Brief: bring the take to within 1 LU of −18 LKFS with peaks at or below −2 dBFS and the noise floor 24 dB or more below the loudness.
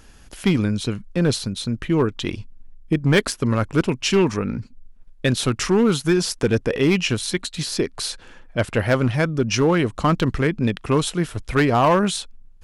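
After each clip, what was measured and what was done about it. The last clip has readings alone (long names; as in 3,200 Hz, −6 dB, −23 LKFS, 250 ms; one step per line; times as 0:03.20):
share of clipped samples 0.8%; peaks flattened at −10.5 dBFS; integrated loudness −21.0 LKFS; sample peak −10.5 dBFS; target loudness −18.0 LKFS
→ clipped peaks rebuilt −10.5 dBFS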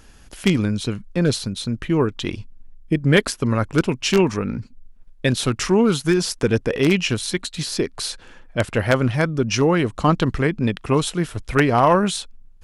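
share of clipped samples 0.0%; integrated loudness −20.5 LKFS; sample peak −1.5 dBFS; target loudness −18.0 LKFS
→ level +2.5 dB
brickwall limiter −2 dBFS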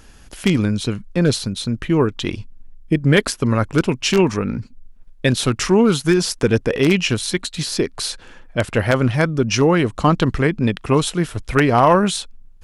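integrated loudness −18.5 LKFS; sample peak −2.0 dBFS; background noise floor −45 dBFS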